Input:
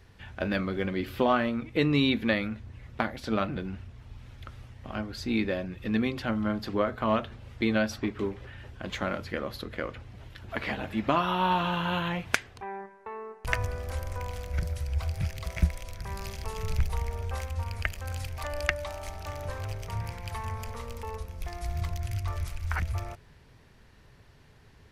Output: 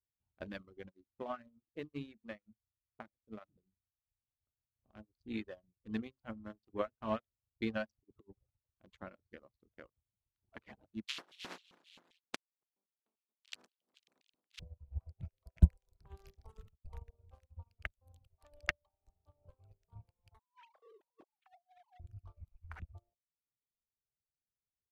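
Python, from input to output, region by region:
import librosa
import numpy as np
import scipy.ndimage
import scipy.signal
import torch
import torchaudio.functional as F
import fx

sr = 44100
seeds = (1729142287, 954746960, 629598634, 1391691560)

y = fx.chain(x, sr, fx.peak_eq(hz=4600.0, db=-11.5, octaves=0.78),
    fx.hum_notches(base_hz=50, count=7),
    fx.comb_fb(f0_hz=210.0, decay_s=0.2, harmonics='all', damping=0.0, mix_pct=40), at=(0.91, 4.76))
y = fx.chain(y, sr, fx.over_compress(threshold_db=-33.0, ratio=-0.5),
    fx.high_shelf(hz=2700.0, db=-7.5), at=(7.95, 8.58))
y = fx.spec_flatten(y, sr, power=0.11, at=(11.05, 14.59), fade=0.02)
y = fx.lowpass(y, sr, hz=4100.0, slope=12, at=(11.05, 14.59), fade=0.02)
y = fx.filter_lfo_highpass(y, sr, shape='square', hz=3.8, low_hz=240.0, high_hz=2900.0, q=1.8, at=(11.05, 14.59), fade=0.02)
y = fx.chain(y, sr, fx.room_flutter(wall_m=4.8, rt60_s=0.35),
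    fx.over_compress(threshold_db=-31.0, ratio=-0.5), at=(15.68, 16.85))
y = fx.chain(y, sr, fx.sine_speech(),
    fx.high_shelf(hz=2200.0, db=7.0),
    fx.over_compress(threshold_db=-35.0, ratio=-0.5), at=(20.39, 22.0))
y = fx.wiener(y, sr, points=25)
y = fx.dereverb_blind(y, sr, rt60_s=1.1)
y = fx.upward_expand(y, sr, threshold_db=-49.0, expansion=2.5)
y = y * 10.0 ** (1.5 / 20.0)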